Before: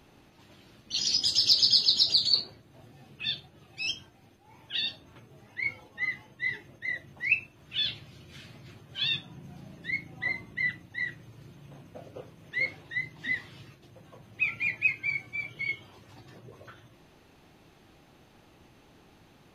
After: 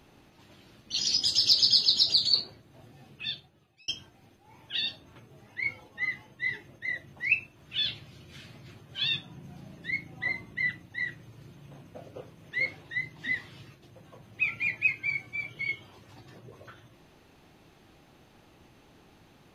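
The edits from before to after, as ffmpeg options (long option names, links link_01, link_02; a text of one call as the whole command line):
ffmpeg -i in.wav -filter_complex "[0:a]asplit=2[link_01][link_02];[link_01]atrim=end=3.88,asetpts=PTS-STARTPTS,afade=type=out:start_time=3.06:duration=0.82[link_03];[link_02]atrim=start=3.88,asetpts=PTS-STARTPTS,afade=type=in:duration=0.004:curve=hsin[link_04];[link_03][link_04]concat=n=2:v=0:a=1" out.wav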